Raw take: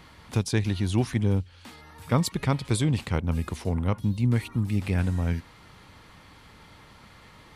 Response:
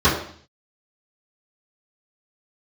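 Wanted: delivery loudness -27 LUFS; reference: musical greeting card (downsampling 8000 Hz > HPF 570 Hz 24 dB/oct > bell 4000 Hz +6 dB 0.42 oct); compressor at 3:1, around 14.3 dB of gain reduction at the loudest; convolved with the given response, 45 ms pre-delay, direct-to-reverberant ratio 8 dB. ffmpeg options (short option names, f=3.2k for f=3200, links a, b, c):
-filter_complex "[0:a]acompressor=threshold=-39dB:ratio=3,asplit=2[a][b];[1:a]atrim=start_sample=2205,adelay=45[c];[b][c]afir=irnorm=-1:irlink=0,volume=-30dB[d];[a][d]amix=inputs=2:normalize=0,aresample=8000,aresample=44100,highpass=f=570:w=0.5412,highpass=f=570:w=1.3066,equalizer=f=4k:t=o:w=0.42:g=6,volume=23dB"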